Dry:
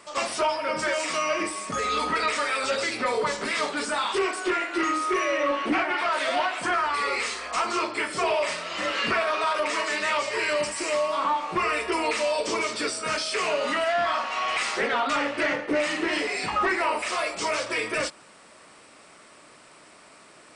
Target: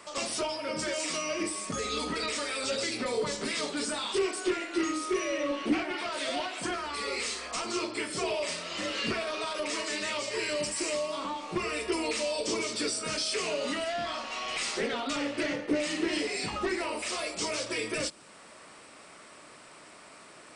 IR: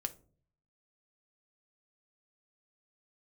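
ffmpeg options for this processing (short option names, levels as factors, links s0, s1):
-filter_complex "[0:a]acrossover=split=490|3000[s0][s1][s2];[s1]acompressor=threshold=0.00562:ratio=2.5[s3];[s0][s3][s2]amix=inputs=3:normalize=0"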